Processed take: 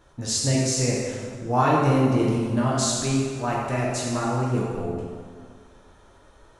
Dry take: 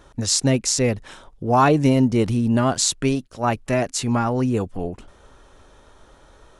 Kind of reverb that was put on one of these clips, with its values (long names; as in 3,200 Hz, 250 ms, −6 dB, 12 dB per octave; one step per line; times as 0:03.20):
dense smooth reverb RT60 1.9 s, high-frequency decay 0.7×, DRR −4.5 dB
level −8.5 dB